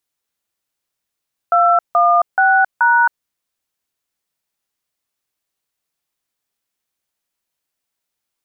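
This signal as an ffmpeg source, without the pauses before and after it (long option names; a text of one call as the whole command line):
ffmpeg -f lavfi -i "aevalsrc='0.251*clip(min(mod(t,0.429),0.269-mod(t,0.429))/0.002,0,1)*(eq(floor(t/0.429),0)*(sin(2*PI*697*mod(t,0.429))+sin(2*PI*1336*mod(t,0.429)))+eq(floor(t/0.429),1)*(sin(2*PI*697*mod(t,0.429))+sin(2*PI*1209*mod(t,0.429)))+eq(floor(t/0.429),2)*(sin(2*PI*770*mod(t,0.429))+sin(2*PI*1477*mod(t,0.429)))+eq(floor(t/0.429),3)*(sin(2*PI*941*mod(t,0.429))+sin(2*PI*1477*mod(t,0.429))))':duration=1.716:sample_rate=44100" out.wav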